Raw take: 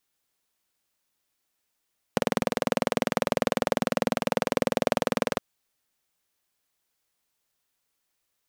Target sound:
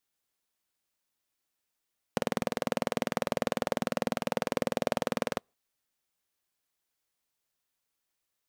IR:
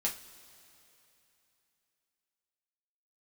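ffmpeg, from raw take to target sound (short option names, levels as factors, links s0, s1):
-filter_complex "[0:a]asplit=2[s0][s1];[1:a]atrim=start_sample=2205,afade=t=out:st=0.35:d=0.01,atrim=end_sample=15876,asetrate=79380,aresample=44100[s2];[s1][s2]afir=irnorm=-1:irlink=0,volume=0.0501[s3];[s0][s3]amix=inputs=2:normalize=0,volume=0.531"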